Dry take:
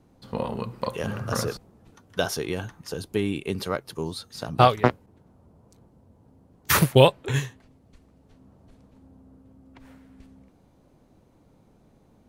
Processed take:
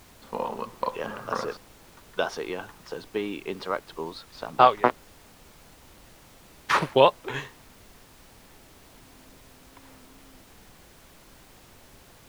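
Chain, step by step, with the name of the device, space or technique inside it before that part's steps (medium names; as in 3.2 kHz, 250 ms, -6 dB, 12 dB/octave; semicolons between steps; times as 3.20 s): horn gramophone (band-pass 290–3900 Hz; peaking EQ 1 kHz +6 dB; wow and flutter; pink noise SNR 22 dB); trim -2 dB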